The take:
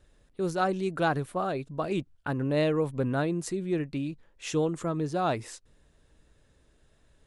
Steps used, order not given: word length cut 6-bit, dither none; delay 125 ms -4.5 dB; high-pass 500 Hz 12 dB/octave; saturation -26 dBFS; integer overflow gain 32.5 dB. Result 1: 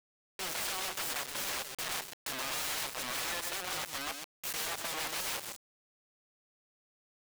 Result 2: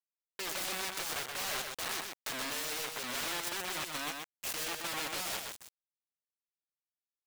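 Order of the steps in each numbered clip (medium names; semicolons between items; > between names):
integer overflow > high-pass > saturation > delay > word length cut; saturation > integer overflow > high-pass > word length cut > delay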